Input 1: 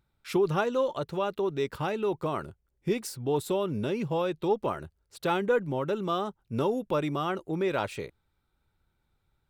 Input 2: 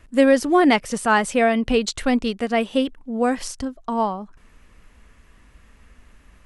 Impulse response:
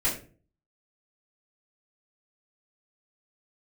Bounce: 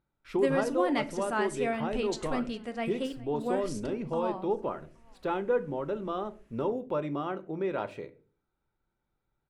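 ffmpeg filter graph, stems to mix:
-filter_complex "[0:a]lowpass=f=1.2k:p=1,lowshelf=f=110:g=-11,volume=-2.5dB,asplit=2[a][b];[b]volume=-19dB[c];[1:a]adelay=250,volume=-14dB,asplit=3[d][e][f];[e]volume=-19dB[g];[f]volume=-22.5dB[h];[2:a]atrim=start_sample=2205[i];[c][g]amix=inputs=2:normalize=0[j];[j][i]afir=irnorm=-1:irlink=0[k];[h]aecho=0:1:411|822|1233|1644|2055|2466|2877|3288:1|0.54|0.292|0.157|0.085|0.0459|0.0248|0.0134[l];[a][d][k][l]amix=inputs=4:normalize=0"

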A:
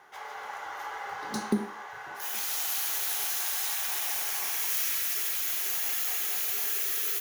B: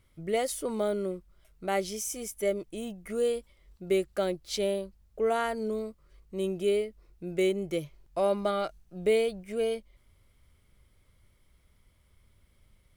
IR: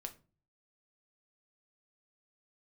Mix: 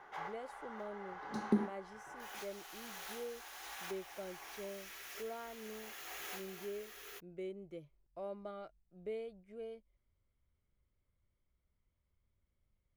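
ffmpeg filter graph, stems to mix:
-filter_complex "[0:a]volume=1dB[a];[1:a]volume=-17dB,asplit=2[b][c];[c]apad=whole_len=317751[d];[a][d]sidechaincompress=threshold=-56dB:ratio=5:attack=32:release=910[e];[e][b]amix=inputs=2:normalize=0,lowpass=f=1.6k:p=1"

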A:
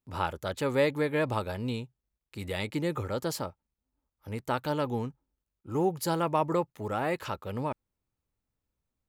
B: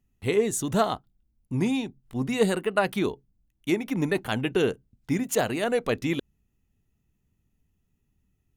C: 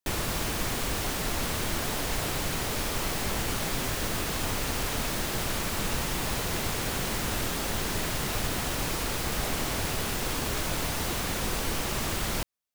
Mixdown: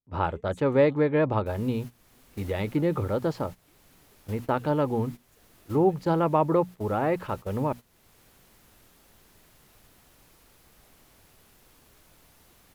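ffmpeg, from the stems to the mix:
-filter_complex "[0:a]lowpass=3.7k,tiltshelf=f=1.5k:g=5.5,bandreject=f=60:t=h:w=6,bandreject=f=120:t=h:w=6,bandreject=f=180:t=h:w=6,bandreject=f=240:t=h:w=6,volume=1dB,asplit=2[a][b];[1:a]acompressor=threshold=-33dB:ratio=5,volume=-19.5dB[c];[2:a]equalizer=f=12k:t=o:w=0.41:g=7.5,adelay=1400,volume=-15dB[d];[b]apad=whole_len=624000[e];[d][e]sidechaincompress=threshold=-34dB:ratio=6:attack=16:release=508[f];[a][c][f]amix=inputs=3:normalize=0,agate=range=-14dB:threshold=-35dB:ratio=16:detection=peak"

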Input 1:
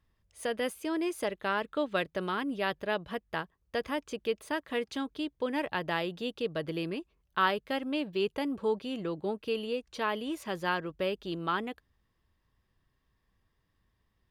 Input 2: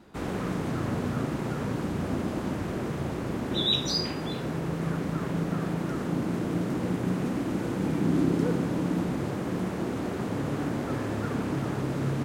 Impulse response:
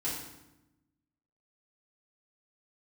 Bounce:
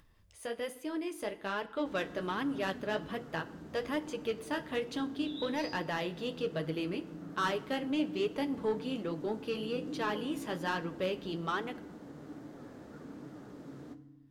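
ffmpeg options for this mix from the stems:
-filter_complex "[0:a]dynaudnorm=f=190:g=17:m=5dB,asoftclip=type=tanh:threshold=-19dB,volume=-3dB,asplit=2[a][b];[b]volume=-16.5dB[c];[1:a]equalizer=f=100:t=o:w=0.67:g=-9,equalizer=f=1k:t=o:w=0.67:g=-3,equalizer=f=2.5k:t=o:w=0.67:g=-7,equalizer=f=10k:t=o:w=0.67:g=-5,adelay=1700,volume=-15dB,asplit=2[d][e];[e]volume=-13dB[f];[2:a]atrim=start_sample=2205[g];[c][f]amix=inputs=2:normalize=0[h];[h][g]afir=irnorm=-1:irlink=0[i];[a][d][i]amix=inputs=3:normalize=0,flanger=delay=5.7:depth=9.6:regen=-39:speed=1.2:shape=triangular,acompressor=mode=upward:threshold=-52dB:ratio=2.5"

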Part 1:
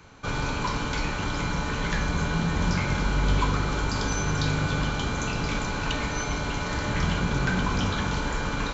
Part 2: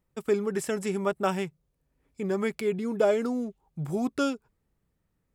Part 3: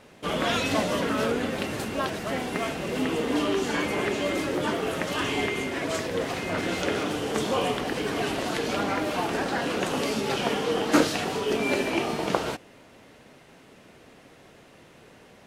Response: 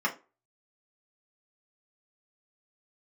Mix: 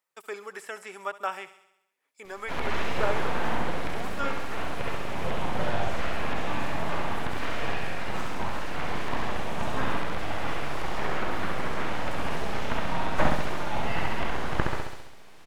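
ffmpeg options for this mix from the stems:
-filter_complex "[1:a]highpass=950,volume=1.5dB,asplit=2[a][b];[b]volume=-17.5dB[c];[2:a]aeval=exprs='abs(val(0))':c=same,adelay=2250,volume=-1dB,asplit=2[d][e];[e]volume=-4dB[f];[c][f]amix=inputs=2:normalize=0,aecho=0:1:67|134|201|268|335|402|469|536|603:1|0.58|0.336|0.195|0.113|0.0656|0.0381|0.0221|0.0128[g];[a][d][g]amix=inputs=3:normalize=0,acrossover=split=2600[h][i];[i]acompressor=threshold=-48dB:ratio=4:attack=1:release=60[j];[h][j]amix=inputs=2:normalize=0"

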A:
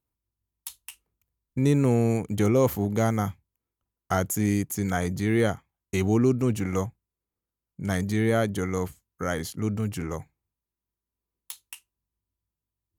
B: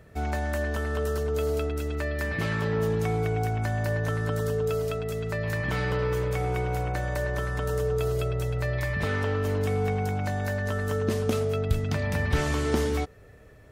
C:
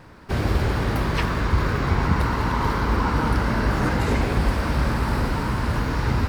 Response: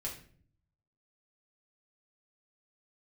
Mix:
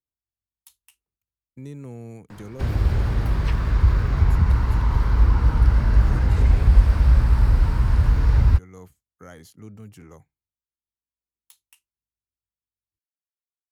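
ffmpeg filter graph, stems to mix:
-filter_complex "[0:a]volume=-13.5dB[a];[2:a]asubboost=boost=3:cutoff=100,adelay=2300,volume=1.5dB[b];[a][b]amix=inputs=2:normalize=0,acrossover=split=150[c][d];[d]acompressor=threshold=-40dB:ratio=2[e];[c][e]amix=inputs=2:normalize=0"

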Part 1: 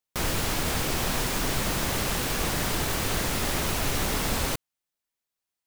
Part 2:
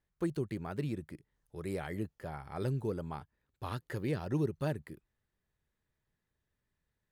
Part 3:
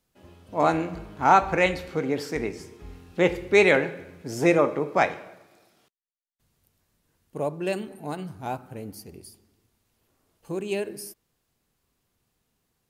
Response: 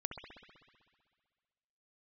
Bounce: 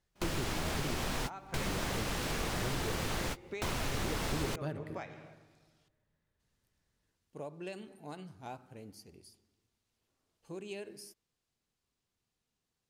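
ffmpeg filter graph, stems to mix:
-filter_complex "[0:a]volume=0.5dB[a];[1:a]volume=-1.5dB,asplit=3[b][c][d];[c]volume=-4.5dB[e];[2:a]equalizer=f=5.9k:t=o:w=2.3:g=7,acompressor=threshold=-24dB:ratio=10,volume=-12.5dB[f];[d]apad=whole_len=249611[g];[a][g]sidechaingate=range=-38dB:threshold=-59dB:ratio=16:detection=peak[h];[3:a]atrim=start_sample=2205[i];[e][i]afir=irnorm=-1:irlink=0[j];[h][b][f][j]amix=inputs=4:normalize=0,highshelf=f=10k:g=-11.5,acompressor=threshold=-38dB:ratio=2"

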